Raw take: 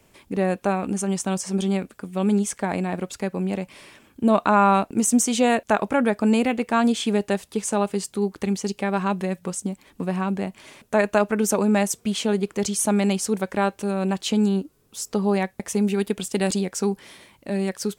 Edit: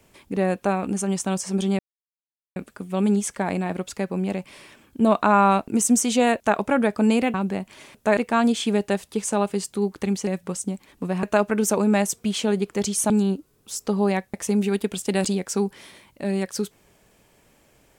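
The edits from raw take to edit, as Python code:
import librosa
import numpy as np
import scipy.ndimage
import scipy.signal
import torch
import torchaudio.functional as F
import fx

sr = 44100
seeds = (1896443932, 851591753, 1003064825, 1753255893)

y = fx.edit(x, sr, fx.insert_silence(at_s=1.79, length_s=0.77),
    fx.cut(start_s=8.67, length_s=0.58),
    fx.move(start_s=10.21, length_s=0.83, to_s=6.57),
    fx.cut(start_s=12.91, length_s=1.45), tone=tone)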